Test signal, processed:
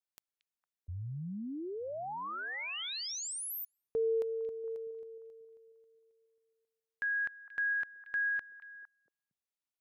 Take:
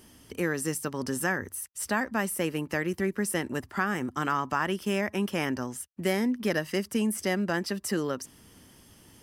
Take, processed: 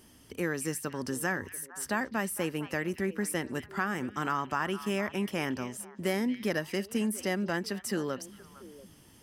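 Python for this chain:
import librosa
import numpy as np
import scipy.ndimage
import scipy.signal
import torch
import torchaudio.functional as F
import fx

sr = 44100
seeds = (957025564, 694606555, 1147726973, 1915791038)

y = fx.echo_stepped(x, sr, ms=229, hz=2900.0, octaves=-1.4, feedback_pct=70, wet_db=-10.0)
y = y * 10.0 ** (-3.0 / 20.0)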